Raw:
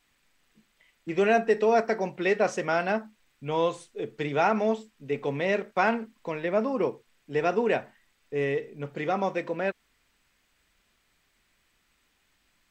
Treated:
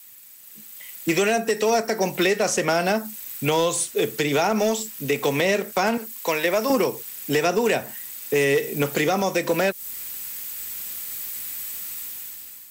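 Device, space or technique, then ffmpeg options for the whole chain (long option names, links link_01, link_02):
FM broadcast chain: -filter_complex "[0:a]asettb=1/sr,asplit=3[link_01][link_02][link_03];[link_01]atrim=end=5.974[link_04];[link_02]atrim=start=5.97:end=6.7,asetpts=PTS-STARTPTS,afade=type=in:duration=0.004:curve=qsin,afade=type=out:start_time=0.726:duration=0.004:curve=qsin,highpass=frequency=830:poles=1[link_05];[link_03]atrim=start=6.696[link_06];[link_04][link_05]acrossfade=duration=0.004:curve1=hsin:curve2=qsin[link_07];[link_07][link_06]acrossfade=duration=0.004:curve1=qsin:curve2=hsin,highpass=62,dynaudnorm=framelen=230:gausssize=7:maxgain=14dB,acrossover=split=170|720|4300[link_08][link_09][link_10][link_11];[link_08]acompressor=threshold=-43dB:ratio=4[link_12];[link_09]acompressor=threshold=-26dB:ratio=4[link_13];[link_10]acompressor=threshold=-33dB:ratio=4[link_14];[link_11]acompressor=threshold=-49dB:ratio=4[link_15];[link_12][link_13][link_14][link_15]amix=inputs=4:normalize=0,aemphasis=mode=production:type=50fm,alimiter=limit=-18dB:level=0:latency=1:release=192,asoftclip=type=hard:threshold=-20.5dB,lowpass=frequency=15000:width=0.5412,lowpass=frequency=15000:width=1.3066,aemphasis=mode=production:type=50fm,volume=7dB"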